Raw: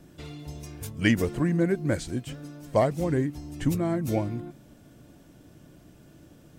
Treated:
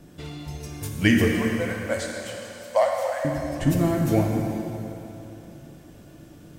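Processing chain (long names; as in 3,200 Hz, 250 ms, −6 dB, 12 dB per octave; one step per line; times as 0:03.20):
0:01.33–0:03.25: linear-phase brick-wall high-pass 490 Hz
dense smooth reverb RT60 3.2 s, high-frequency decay 0.9×, DRR 0 dB
level +2.5 dB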